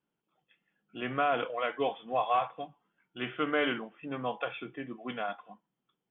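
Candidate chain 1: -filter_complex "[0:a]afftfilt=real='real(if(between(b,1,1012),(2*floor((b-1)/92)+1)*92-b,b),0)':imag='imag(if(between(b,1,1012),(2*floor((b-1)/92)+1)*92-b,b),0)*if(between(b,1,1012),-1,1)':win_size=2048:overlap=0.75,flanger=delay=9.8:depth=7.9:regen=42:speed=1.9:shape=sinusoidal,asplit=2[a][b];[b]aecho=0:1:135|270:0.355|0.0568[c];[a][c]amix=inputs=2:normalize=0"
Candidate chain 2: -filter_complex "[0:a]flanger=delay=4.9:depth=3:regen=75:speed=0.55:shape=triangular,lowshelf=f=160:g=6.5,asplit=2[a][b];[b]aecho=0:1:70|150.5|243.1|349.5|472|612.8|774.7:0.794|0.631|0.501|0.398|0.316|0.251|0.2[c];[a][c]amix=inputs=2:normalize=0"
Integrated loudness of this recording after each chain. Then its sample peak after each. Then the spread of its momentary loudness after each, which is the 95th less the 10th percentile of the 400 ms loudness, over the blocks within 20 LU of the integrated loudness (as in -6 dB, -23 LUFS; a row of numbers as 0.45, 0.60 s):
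-35.5, -33.0 LUFS; -18.5, -17.0 dBFS; 13, 12 LU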